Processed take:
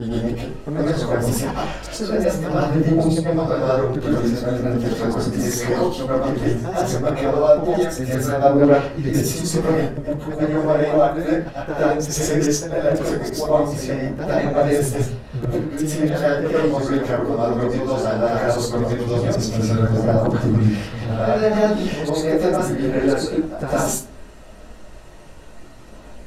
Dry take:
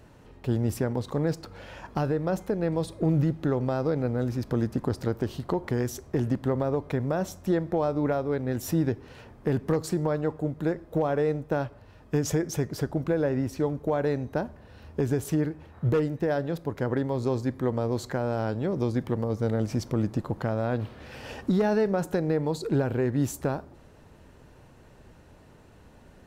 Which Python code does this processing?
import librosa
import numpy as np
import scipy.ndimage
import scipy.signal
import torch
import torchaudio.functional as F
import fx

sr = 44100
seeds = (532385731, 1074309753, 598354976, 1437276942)

p1 = fx.block_reorder(x, sr, ms=166.0, group=4)
p2 = scipy.signal.sosfilt(scipy.signal.butter(2, 11000.0, 'lowpass', fs=sr, output='sos'), p1)
p3 = fx.high_shelf(p2, sr, hz=4900.0, db=8.0)
p4 = fx.rider(p3, sr, range_db=4, speed_s=0.5)
p5 = p3 + F.gain(torch.from_numpy(p4), -1.0).numpy()
p6 = fx.chorus_voices(p5, sr, voices=4, hz=1.3, base_ms=16, depth_ms=3.0, mix_pct=65)
p7 = fx.rev_freeverb(p6, sr, rt60_s=0.43, hf_ratio=0.7, predelay_ms=65, drr_db=-9.0)
y = F.gain(torch.from_numpy(p7), -2.5).numpy()